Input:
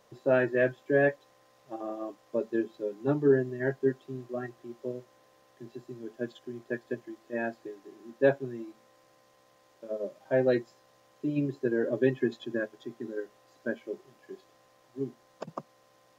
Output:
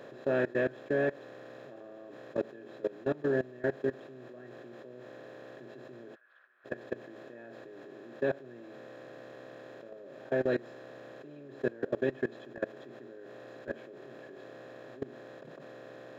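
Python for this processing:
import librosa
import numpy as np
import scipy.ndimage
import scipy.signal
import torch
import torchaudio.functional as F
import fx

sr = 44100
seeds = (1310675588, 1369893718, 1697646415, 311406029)

y = fx.bin_compress(x, sr, power=0.4)
y = fx.level_steps(y, sr, step_db=21)
y = fx.ladder_bandpass(y, sr, hz=1600.0, resonance_pct=60, at=(6.14, 6.64), fade=0.02)
y = y * librosa.db_to_amplitude(-6.5)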